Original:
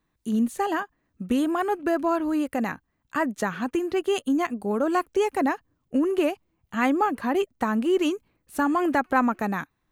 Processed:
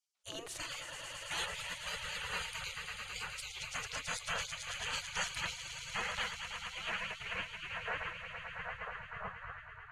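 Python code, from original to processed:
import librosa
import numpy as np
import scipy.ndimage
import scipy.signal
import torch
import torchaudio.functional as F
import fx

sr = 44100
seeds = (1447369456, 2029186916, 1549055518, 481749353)

y = fx.filter_sweep_lowpass(x, sr, from_hz=6200.0, to_hz=480.0, start_s=5.81, end_s=8.32, q=0.77)
y = fx.echo_swell(y, sr, ms=110, loudest=5, wet_db=-11)
y = fx.spec_gate(y, sr, threshold_db=-30, keep='weak')
y = y * librosa.db_to_amplitude(5.0)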